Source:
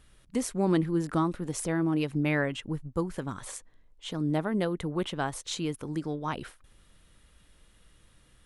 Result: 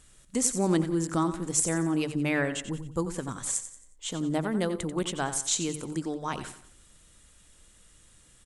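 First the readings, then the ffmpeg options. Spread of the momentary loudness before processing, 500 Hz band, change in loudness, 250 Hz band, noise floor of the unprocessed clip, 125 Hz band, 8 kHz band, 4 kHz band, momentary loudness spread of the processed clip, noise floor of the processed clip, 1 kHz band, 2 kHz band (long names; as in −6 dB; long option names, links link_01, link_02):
11 LU, +0.5 dB, +1.5 dB, 0.0 dB, −61 dBFS, −1.0 dB, +12.0 dB, +3.0 dB, 9 LU, −58 dBFS, +0.5 dB, +1.0 dB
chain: -filter_complex "[0:a]equalizer=frequency=7500:width=1.5:gain=15,bandreject=frequency=50:width_type=h:width=6,bandreject=frequency=100:width_type=h:width=6,bandreject=frequency=150:width_type=h:width=6,asplit=2[link_01][link_02];[link_02]aecho=0:1:90|180|270|360:0.266|0.106|0.0426|0.017[link_03];[link_01][link_03]amix=inputs=2:normalize=0"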